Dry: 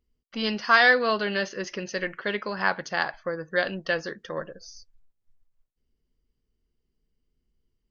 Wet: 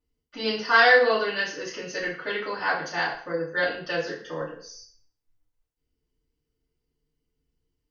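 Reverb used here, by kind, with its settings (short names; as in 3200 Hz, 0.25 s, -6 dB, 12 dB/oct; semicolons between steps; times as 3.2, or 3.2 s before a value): FDN reverb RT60 0.51 s, low-frequency decay 0.75×, high-frequency decay 0.9×, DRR -9.5 dB; gain -9 dB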